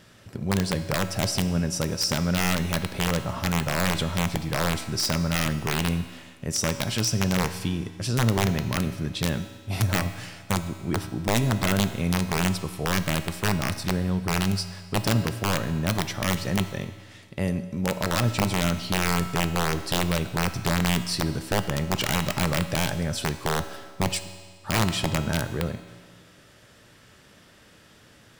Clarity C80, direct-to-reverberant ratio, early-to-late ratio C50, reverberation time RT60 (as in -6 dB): 12.5 dB, 9.0 dB, 11.0 dB, 1.7 s